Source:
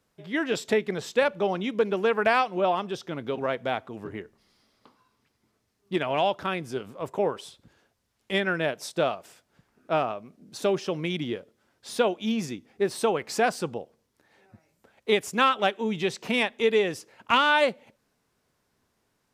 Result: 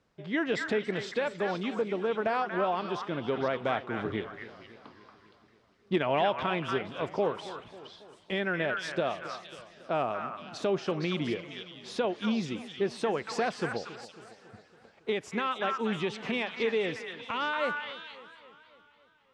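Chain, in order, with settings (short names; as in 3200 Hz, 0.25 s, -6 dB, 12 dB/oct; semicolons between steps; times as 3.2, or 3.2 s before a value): 1.78–2.54 bell 2300 Hz -7 dB 1.7 oct; in parallel at -1 dB: compressor, threshold -31 dBFS, peak gain reduction 14.5 dB; on the sum: limiter -13.5 dBFS, peak gain reduction 8 dB; vocal rider within 5 dB 2 s; on a send: delay with a stepping band-pass 0.233 s, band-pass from 1500 Hz, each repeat 1.4 oct, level -0.5 dB; on the sum: wow and flutter 26 cents; air absorption 110 m; warbling echo 0.276 s, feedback 58%, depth 132 cents, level -16 dB; gain -5 dB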